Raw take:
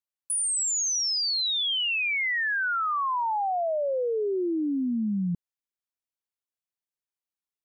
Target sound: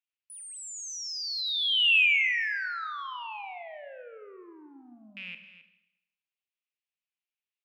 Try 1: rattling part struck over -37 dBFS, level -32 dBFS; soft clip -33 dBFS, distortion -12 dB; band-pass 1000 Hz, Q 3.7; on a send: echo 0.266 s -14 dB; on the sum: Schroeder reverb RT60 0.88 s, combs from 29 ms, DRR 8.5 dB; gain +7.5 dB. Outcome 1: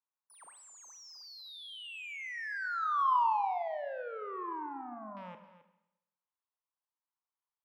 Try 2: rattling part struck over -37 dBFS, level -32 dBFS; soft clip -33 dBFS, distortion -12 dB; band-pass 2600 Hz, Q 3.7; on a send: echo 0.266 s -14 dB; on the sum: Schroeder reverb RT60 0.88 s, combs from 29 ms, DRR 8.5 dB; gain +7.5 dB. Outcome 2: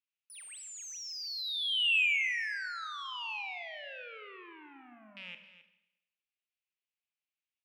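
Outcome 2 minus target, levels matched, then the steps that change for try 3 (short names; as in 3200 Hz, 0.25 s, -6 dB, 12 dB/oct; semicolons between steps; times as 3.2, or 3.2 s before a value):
soft clip: distortion +11 dB
change: soft clip -24 dBFS, distortion -23 dB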